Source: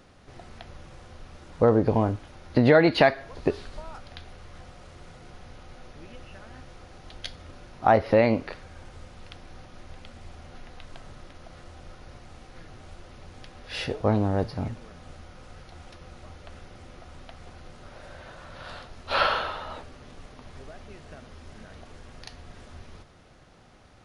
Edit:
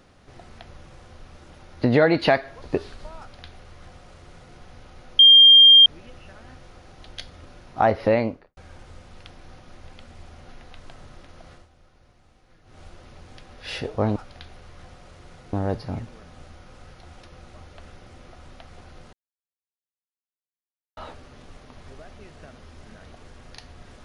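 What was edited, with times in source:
1.53–2.26 s: delete
3.92–5.29 s: copy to 14.22 s
5.92 s: add tone 3.2 kHz -7 dBFS 0.67 s
8.16–8.63 s: studio fade out
11.58–12.86 s: dip -11.5 dB, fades 0.16 s
17.82–19.66 s: mute

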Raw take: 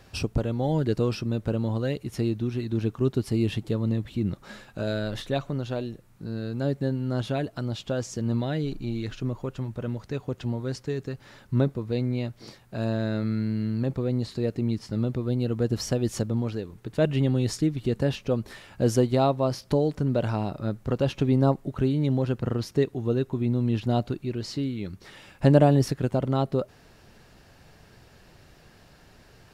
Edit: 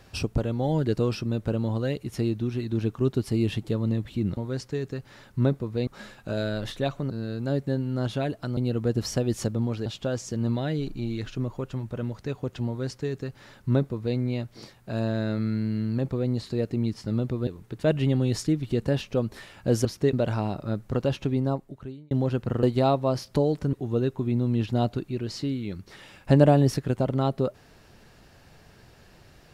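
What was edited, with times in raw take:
5.60–6.24 s: delete
10.52–12.02 s: copy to 4.37 s
15.32–16.61 s: move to 7.71 s
18.99–20.09 s: swap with 22.59–22.87 s
20.93–22.07 s: fade out linear

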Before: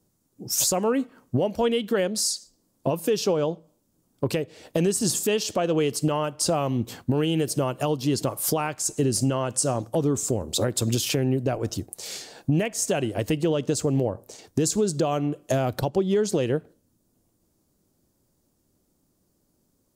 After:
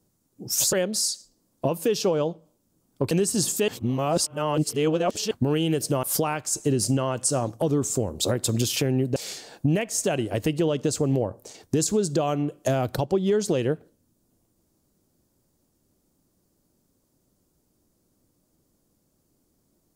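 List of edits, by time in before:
0.73–1.95 s: delete
4.33–4.78 s: delete
5.35–6.98 s: reverse
7.70–8.36 s: delete
11.49–12.00 s: delete

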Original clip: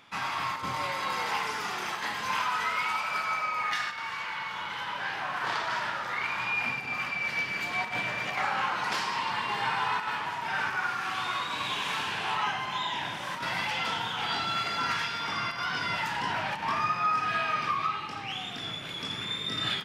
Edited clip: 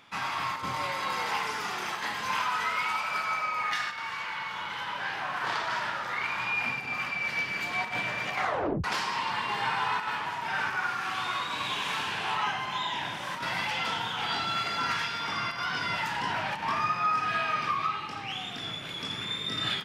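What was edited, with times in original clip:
8.42 s: tape stop 0.42 s

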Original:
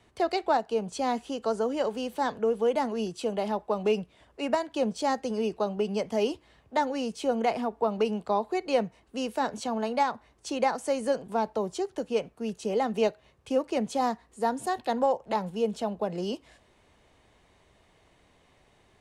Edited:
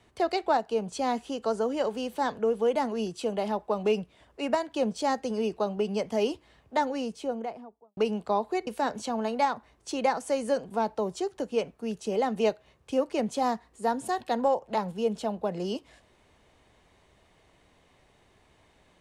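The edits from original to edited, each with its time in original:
6.79–7.97 s: studio fade out
8.67–9.25 s: delete

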